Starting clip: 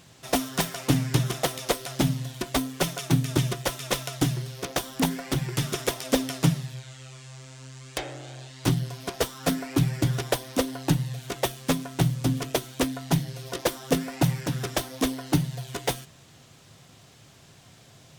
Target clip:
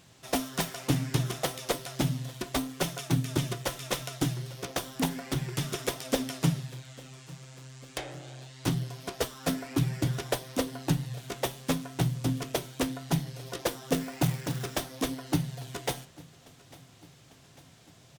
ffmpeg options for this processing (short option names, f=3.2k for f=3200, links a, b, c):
-filter_complex "[0:a]flanger=delay=8.8:depth=6.2:regen=-77:speed=0.66:shape=triangular,aecho=1:1:848|1696|2544|3392:0.075|0.0435|0.0252|0.0146,asettb=1/sr,asplit=3[a][b][c];[a]atrim=end=13.934[d];[b]atrim=start=13.93:end=14.84,asetpts=PTS-STARTPTS,afade=t=in:d=0.004:c=qsin,afade=t=out:st=0.906:d=0.004:c=qsin,acrusher=bits=3:mode=log:mix=0:aa=0.000001[e];[c]atrim=start=14.836[f];[d][e]acrossfade=d=0.004:c1=hsin:c2=qsin[g];[g][f]acrossfade=d=0.004:c1=qsin:c2=hsin"